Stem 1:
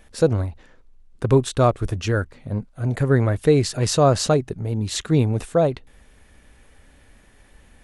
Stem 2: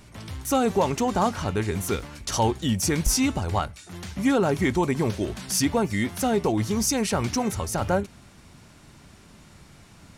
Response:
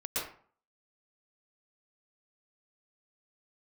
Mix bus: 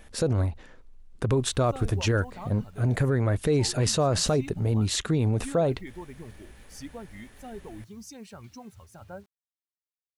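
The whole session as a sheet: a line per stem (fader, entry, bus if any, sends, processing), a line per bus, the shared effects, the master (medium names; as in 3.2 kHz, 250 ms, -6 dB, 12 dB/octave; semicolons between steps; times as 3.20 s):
+1.0 dB, 0.00 s, no send, none
-16.0 dB, 1.20 s, no send, expander on every frequency bin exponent 1.5; treble shelf 6.9 kHz -8 dB; word length cut 8-bit, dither none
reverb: none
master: peak limiter -15.5 dBFS, peak gain reduction 11 dB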